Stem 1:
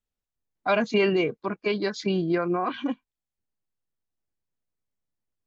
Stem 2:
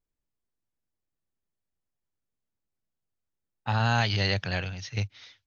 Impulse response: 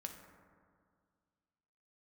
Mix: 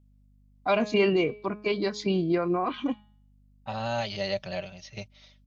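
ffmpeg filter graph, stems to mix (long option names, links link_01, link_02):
-filter_complex "[0:a]bandreject=frequency=209.2:width_type=h:width=4,bandreject=frequency=418.4:width_type=h:width=4,bandreject=frequency=627.6:width_type=h:width=4,bandreject=frequency=836.8:width_type=h:width=4,bandreject=frequency=1046:width_type=h:width=4,bandreject=frequency=1255.2:width_type=h:width=4,bandreject=frequency=1464.4:width_type=h:width=4,bandreject=frequency=1673.6:width_type=h:width=4,bandreject=frequency=1882.8:width_type=h:width=4,bandreject=frequency=2092:width_type=h:width=4,bandreject=frequency=2301.2:width_type=h:width=4,bandreject=frequency=2510.4:width_type=h:width=4,bandreject=frequency=2719.6:width_type=h:width=4,bandreject=frequency=2928.8:width_type=h:width=4,bandreject=frequency=3138:width_type=h:width=4,bandreject=frequency=3347.2:width_type=h:width=4,bandreject=frequency=3556.4:width_type=h:width=4,bandreject=frequency=3765.6:width_type=h:width=4,bandreject=frequency=3974.8:width_type=h:width=4,bandreject=frequency=4184:width_type=h:width=4,bandreject=frequency=4393.2:width_type=h:width=4,bandreject=frequency=4602.4:width_type=h:width=4,bandreject=frequency=4811.6:width_type=h:width=4,bandreject=frequency=5020.8:width_type=h:width=4,bandreject=frequency=5230:width_type=h:width=4,aeval=exprs='val(0)+0.00126*(sin(2*PI*50*n/s)+sin(2*PI*2*50*n/s)/2+sin(2*PI*3*50*n/s)/3+sin(2*PI*4*50*n/s)/4+sin(2*PI*5*50*n/s)/5)':channel_layout=same,volume=-0.5dB[link_01];[1:a]equalizer=frequency=610:width=4.8:gain=14,aecho=1:1:5.2:0.64,volume=-7.5dB[link_02];[link_01][link_02]amix=inputs=2:normalize=0,equalizer=frequency=1600:width=4:gain=-7.5"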